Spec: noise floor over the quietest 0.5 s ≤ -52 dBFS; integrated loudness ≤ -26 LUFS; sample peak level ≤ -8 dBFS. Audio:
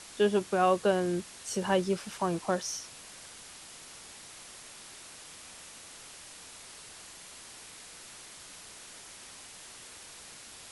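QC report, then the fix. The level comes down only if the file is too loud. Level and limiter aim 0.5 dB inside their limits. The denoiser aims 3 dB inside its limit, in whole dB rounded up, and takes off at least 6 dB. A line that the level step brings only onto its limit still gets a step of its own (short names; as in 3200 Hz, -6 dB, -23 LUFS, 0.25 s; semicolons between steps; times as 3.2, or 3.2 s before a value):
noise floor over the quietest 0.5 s -49 dBFS: fail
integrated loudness -30.0 LUFS: OK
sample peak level -12.5 dBFS: OK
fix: denoiser 6 dB, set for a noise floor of -49 dBFS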